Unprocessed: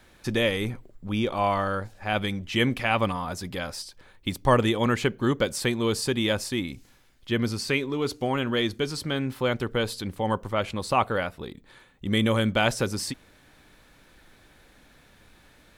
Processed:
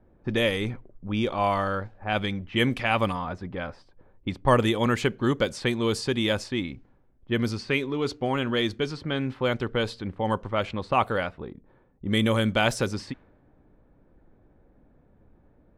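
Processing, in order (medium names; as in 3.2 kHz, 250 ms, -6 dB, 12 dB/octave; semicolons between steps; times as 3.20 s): level-controlled noise filter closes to 540 Hz, open at -20 dBFS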